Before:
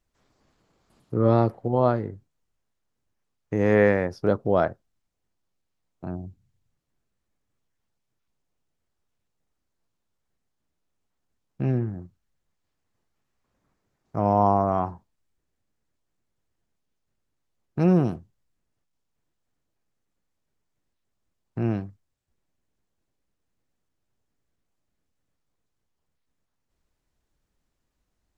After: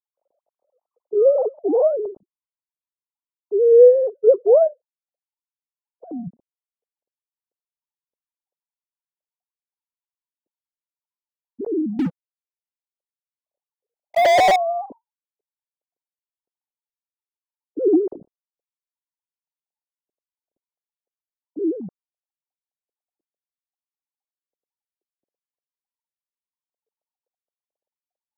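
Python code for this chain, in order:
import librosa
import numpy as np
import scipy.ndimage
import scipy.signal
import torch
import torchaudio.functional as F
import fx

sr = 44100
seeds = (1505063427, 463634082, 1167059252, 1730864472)

y = fx.sine_speech(x, sr)
y = scipy.signal.sosfilt(scipy.signal.cheby2(4, 70, 2700.0, 'lowpass', fs=sr, output='sos'), y)
y = fx.leveller(y, sr, passes=5, at=(11.99, 14.56))
y = F.gain(torch.from_numpy(y), 7.0).numpy()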